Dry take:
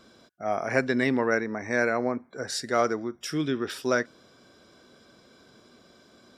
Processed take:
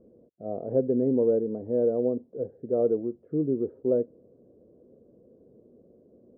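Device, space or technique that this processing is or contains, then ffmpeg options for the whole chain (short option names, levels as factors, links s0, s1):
under water: -filter_complex "[0:a]asettb=1/sr,asplit=3[s0][s1][s2];[s0]atrim=end=2.844[s3];[s1]atrim=start=2.84:end=3.43,asetpts=PTS-STARTPTS,afade=t=in:d=0.004:c=qsin,afade=t=out:st=0.586:d=0.004:c=qsin,equalizer=f=2000:t=o:w=1.5:g=5.5[s4];[s2]atrim=start=3.426[s5];[s3][s4]acrossfade=d=0.004:c1=hsin:c2=qsin[s6];[s6][s5]acrossfade=d=0.004:c1=qsin:c2=hsin,lowpass=f=500:w=0.5412,lowpass=f=500:w=1.3066,equalizer=f=490:t=o:w=0.44:g=9"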